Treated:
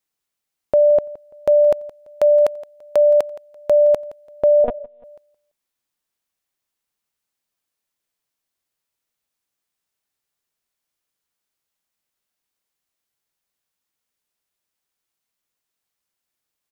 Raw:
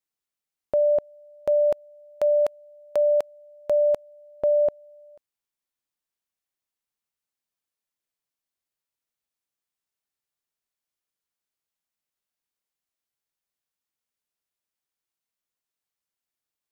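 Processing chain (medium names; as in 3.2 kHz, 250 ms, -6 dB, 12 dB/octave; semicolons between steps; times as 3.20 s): feedback delay 169 ms, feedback 28%, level -18.5 dB; 4.64–5.04 s: monotone LPC vocoder at 8 kHz 240 Hz; trim +7 dB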